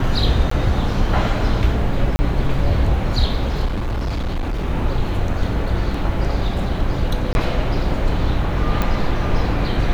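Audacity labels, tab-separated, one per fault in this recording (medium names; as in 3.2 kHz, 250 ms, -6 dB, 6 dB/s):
0.500000	0.510000	dropout
2.160000	2.190000	dropout 30 ms
3.650000	4.650000	clipped -18.5 dBFS
5.940000	5.940000	dropout 4 ms
7.330000	7.350000	dropout 21 ms
8.820000	8.820000	pop -7 dBFS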